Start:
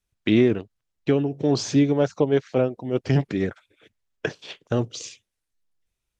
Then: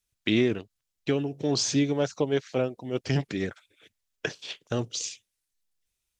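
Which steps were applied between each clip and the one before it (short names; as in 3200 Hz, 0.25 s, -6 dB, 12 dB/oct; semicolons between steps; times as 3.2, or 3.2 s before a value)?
high shelf 2400 Hz +11.5 dB; gain -6 dB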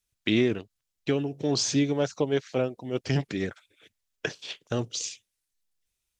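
nothing audible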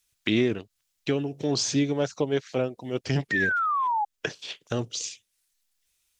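painted sound fall, 3.31–4.05, 810–1900 Hz -25 dBFS; mismatched tape noise reduction encoder only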